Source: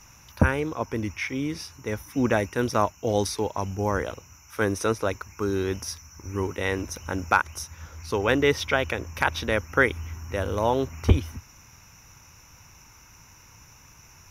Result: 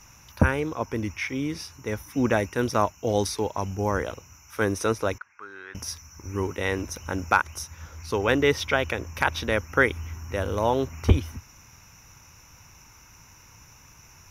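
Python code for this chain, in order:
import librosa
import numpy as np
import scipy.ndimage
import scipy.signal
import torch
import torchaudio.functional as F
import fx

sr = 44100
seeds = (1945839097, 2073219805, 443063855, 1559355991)

y = fx.bandpass_q(x, sr, hz=1600.0, q=3.1, at=(5.18, 5.75))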